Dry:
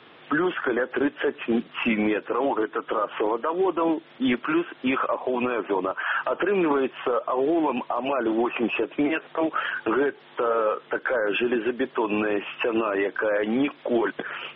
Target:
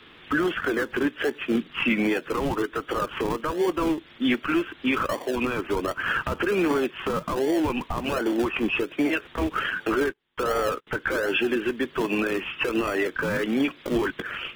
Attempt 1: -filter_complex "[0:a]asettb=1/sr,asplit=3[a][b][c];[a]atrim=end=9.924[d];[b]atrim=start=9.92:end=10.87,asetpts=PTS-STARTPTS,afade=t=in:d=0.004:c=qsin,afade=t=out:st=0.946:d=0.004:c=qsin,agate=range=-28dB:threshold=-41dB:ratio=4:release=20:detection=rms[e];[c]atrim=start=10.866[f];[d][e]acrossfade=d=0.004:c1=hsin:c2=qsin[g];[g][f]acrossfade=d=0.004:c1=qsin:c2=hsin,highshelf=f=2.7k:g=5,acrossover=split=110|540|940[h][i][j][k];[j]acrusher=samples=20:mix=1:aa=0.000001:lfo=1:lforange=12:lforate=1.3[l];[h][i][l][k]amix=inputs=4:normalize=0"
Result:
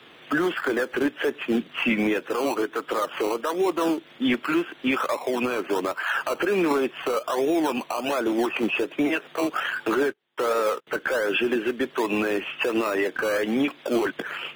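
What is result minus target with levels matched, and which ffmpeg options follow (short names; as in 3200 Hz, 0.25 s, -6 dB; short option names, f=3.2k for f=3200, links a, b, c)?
decimation with a swept rate: distortion -30 dB
-filter_complex "[0:a]asettb=1/sr,asplit=3[a][b][c];[a]atrim=end=9.924[d];[b]atrim=start=9.92:end=10.87,asetpts=PTS-STARTPTS,afade=t=in:d=0.004:c=qsin,afade=t=out:st=0.946:d=0.004:c=qsin,agate=range=-28dB:threshold=-41dB:ratio=4:release=20:detection=rms[e];[c]atrim=start=10.866[f];[d][e]acrossfade=d=0.004:c1=hsin:c2=qsin[g];[g][f]acrossfade=d=0.004:c1=qsin:c2=hsin,highshelf=f=2.7k:g=5,acrossover=split=110|540|940[h][i][j][k];[j]acrusher=samples=48:mix=1:aa=0.000001:lfo=1:lforange=28.8:lforate=1.3[l];[h][i][l][k]amix=inputs=4:normalize=0"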